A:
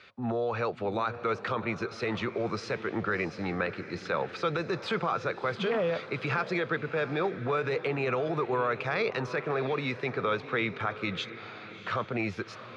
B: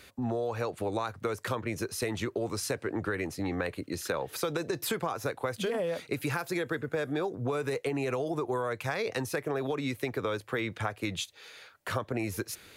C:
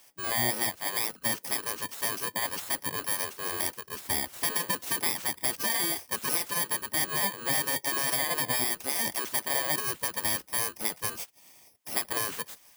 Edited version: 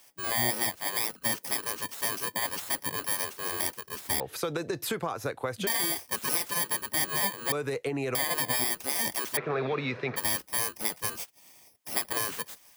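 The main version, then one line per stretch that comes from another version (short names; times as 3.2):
C
4.2–5.67 from B
7.52–8.15 from B
9.37–10.16 from A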